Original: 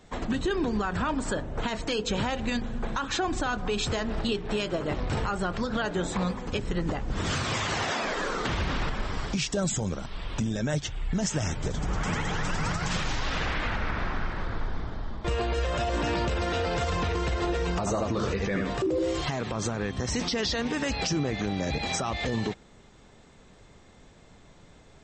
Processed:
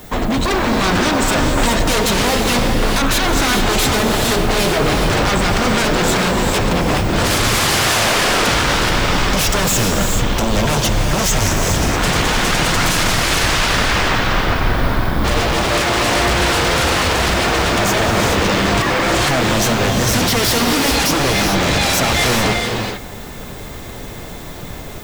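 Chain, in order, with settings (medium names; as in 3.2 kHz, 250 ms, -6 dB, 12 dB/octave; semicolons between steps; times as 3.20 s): level rider gain up to 5 dB; in parallel at -6 dB: sine folder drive 17 dB, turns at -10 dBFS; on the sum: added noise violet -43 dBFS; 14.60–15.25 s: flutter echo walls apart 8 m, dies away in 0.56 s; gated-style reverb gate 460 ms rising, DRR 2.5 dB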